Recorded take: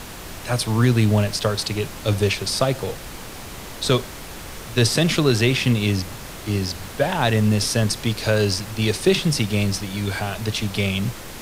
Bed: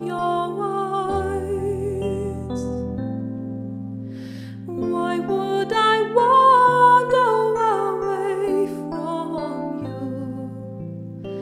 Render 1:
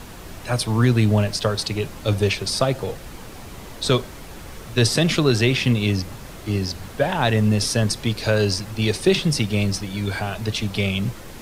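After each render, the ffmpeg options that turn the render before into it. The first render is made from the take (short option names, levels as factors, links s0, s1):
-af "afftdn=nr=6:nf=-36"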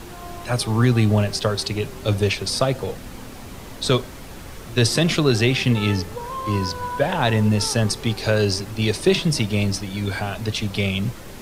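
-filter_complex "[1:a]volume=0.15[s0];[0:a][s0]amix=inputs=2:normalize=0"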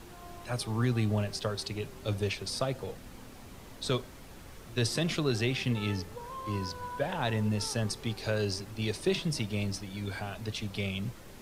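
-af "volume=0.266"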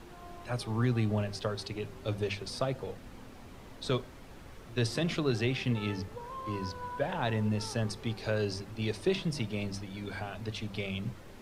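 -af "highshelf=f=5100:g=-9.5,bandreject=f=50:t=h:w=6,bandreject=f=100:t=h:w=6,bandreject=f=150:t=h:w=6,bandreject=f=200:t=h:w=6"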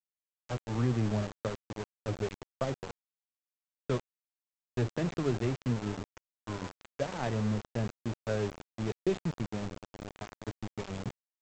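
-af "adynamicsmooth=sensitivity=1:basefreq=880,aresample=16000,aeval=exprs='val(0)*gte(abs(val(0)),0.0188)':c=same,aresample=44100"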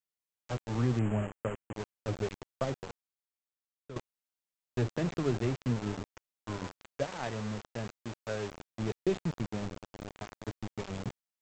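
-filter_complex "[0:a]asettb=1/sr,asplit=3[s0][s1][s2];[s0]atrim=end=0.994[s3];[s1]atrim=start=0.99:end=1.74,asetpts=PTS-STARTPTS,afade=t=in:d=0.004:c=qsin,afade=t=out:st=0.746:d=0.004:c=qsin,asuperstop=centerf=4700:order=12:qfactor=1.2[s4];[s2]atrim=start=1.736[s5];[s3][s4]acrossfade=d=0.004:c1=hsin:c2=qsin[s6];[s6][s5]acrossfade=d=0.004:c1=qsin:c2=hsin,asettb=1/sr,asplit=3[s7][s8][s9];[s7]atrim=end=7.054[s10];[s8]atrim=start=7.05:end=8.52,asetpts=PTS-STARTPTS,afade=t=in:d=0.004:c=qsin,afade=t=out:st=1.466:d=0.004:c=qsin,lowshelf=f=470:g=-7.5[s11];[s9]atrim=start=8.516[s12];[s10][s11]acrossfade=d=0.004:c1=hsin:c2=qsin[s13];[s13][s12]acrossfade=d=0.004:c1=qsin:c2=hsin,asplit=2[s14][s15];[s14]atrim=end=3.96,asetpts=PTS-STARTPTS,afade=t=out:st=2.62:d=1.34:silence=0.149624[s16];[s15]atrim=start=3.96,asetpts=PTS-STARTPTS,afade=t=in:d=0.004:c=hsin:silence=0.149624[s17];[s16][s17]concat=n=2:v=0:a=1"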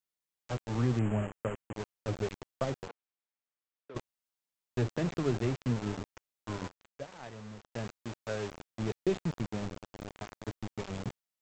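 -filter_complex "[0:a]asettb=1/sr,asplit=3[s0][s1][s2];[s0]atrim=end=2.884[s3];[s1]atrim=start=2.88:end=3.95,asetpts=PTS-STARTPTS,afade=t=in:d=0.004:c=qsin,afade=t=out:st=1.066:d=0.004:c=qsin,highpass=310,lowpass=3000[s4];[s2]atrim=start=3.946[s5];[s3][s4]acrossfade=d=0.004:c1=hsin:c2=qsin[s6];[s6][s5]acrossfade=d=0.004:c1=qsin:c2=hsin,asplit=3[s7][s8][s9];[s7]atrim=end=6.682[s10];[s8]atrim=start=6.678:end=7.722,asetpts=PTS-STARTPTS,volume=0.335[s11];[s9]atrim=start=7.718[s12];[s10][s11]acrossfade=d=0.004:c1=hsin:c2=hsin[s13];[s13][s12]acrossfade=d=0.004:c1=hsin:c2=hsin"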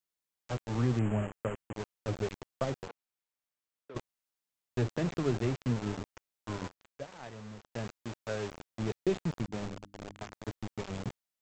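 -filter_complex "[0:a]asplit=3[s0][s1][s2];[s0]afade=t=out:st=9.48:d=0.02[s3];[s1]bandreject=f=50:t=h:w=6,bandreject=f=100:t=h:w=6,bandreject=f=150:t=h:w=6,bandreject=f=200:t=h:w=6,bandreject=f=250:t=h:w=6,bandreject=f=300:t=h:w=6,afade=t=in:st=9.48:d=0.02,afade=t=out:st=10.3:d=0.02[s4];[s2]afade=t=in:st=10.3:d=0.02[s5];[s3][s4][s5]amix=inputs=3:normalize=0"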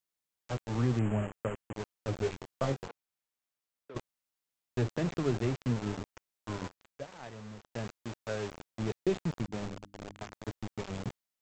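-filter_complex "[0:a]asettb=1/sr,asplit=3[s0][s1][s2];[s0]atrim=end=2.204[s3];[s1]atrim=start=2.2:end=2.86,asetpts=PTS-STARTPTS,afade=t=in:d=0.004:c=qsin,afade=t=out:st=0.656:d=0.004:c=qsin,asplit=2[s4][s5];[s5]adelay=22,volume=0.668[s6];[s4][s6]amix=inputs=2:normalize=0,atrim=end_sample=29106[s7];[s2]atrim=start=2.856[s8];[s3][s7]acrossfade=d=0.004:c1=hsin:c2=qsin[s9];[s9][s8]acrossfade=d=0.004:c1=qsin:c2=hsin"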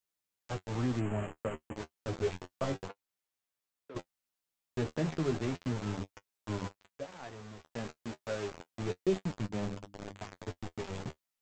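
-filter_complex "[0:a]asplit=2[s0][s1];[s1]asoftclip=type=tanh:threshold=0.0251,volume=0.562[s2];[s0][s2]amix=inputs=2:normalize=0,flanger=delay=9.8:depth=3.2:regen=34:speed=0.31:shape=sinusoidal"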